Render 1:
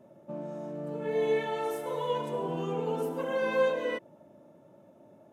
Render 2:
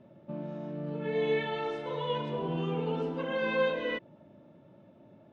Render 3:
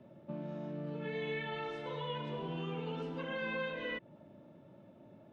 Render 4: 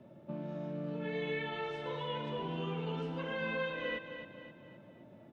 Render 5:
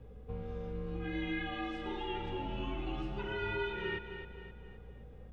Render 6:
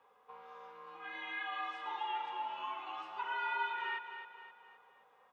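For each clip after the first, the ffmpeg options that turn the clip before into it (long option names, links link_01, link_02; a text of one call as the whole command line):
ffmpeg -i in.wav -af "lowpass=frequency=3900:width=0.5412,lowpass=frequency=3900:width=1.3066,equalizer=frequency=670:width=0.41:gain=-10,volume=7dB" out.wav
ffmpeg -i in.wav -filter_complex "[0:a]acrossover=split=180|1400|2900[link_01][link_02][link_03][link_04];[link_01]acompressor=threshold=-44dB:ratio=4[link_05];[link_02]acompressor=threshold=-40dB:ratio=4[link_06];[link_03]acompressor=threshold=-39dB:ratio=4[link_07];[link_04]acompressor=threshold=-56dB:ratio=4[link_08];[link_05][link_06][link_07][link_08]amix=inputs=4:normalize=0,volume=-1dB" out.wav
ffmpeg -i in.wav -af "aecho=1:1:262|524|786|1048|1310:0.335|0.154|0.0709|0.0326|0.015,volume=1dB" out.wav
ffmpeg -i in.wav -af "aeval=exprs='val(0)+0.00251*(sin(2*PI*60*n/s)+sin(2*PI*2*60*n/s)/2+sin(2*PI*3*60*n/s)/3+sin(2*PI*4*60*n/s)/4+sin(2*PI*5*60*n/s)/5)':channel_layout=same,afreqshift=-120" out.wav
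ffmpeg -i in.wav -af "highpass=frequency=1000:width_type=q:width=4.9,volume=-2.5dB" out.wav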